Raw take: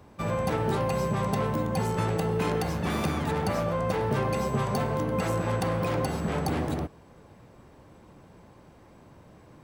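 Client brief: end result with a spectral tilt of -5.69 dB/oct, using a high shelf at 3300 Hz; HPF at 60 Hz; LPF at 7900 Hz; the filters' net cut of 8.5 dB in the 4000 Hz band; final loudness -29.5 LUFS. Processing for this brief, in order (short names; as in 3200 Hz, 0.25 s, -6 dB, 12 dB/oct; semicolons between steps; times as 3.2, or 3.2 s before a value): HPF 60 Hz; LPF 7900 Hz; high shelf 3300 Hz -6 dB; bell 4000 Hz -6.5 dB; gain -0.5 dB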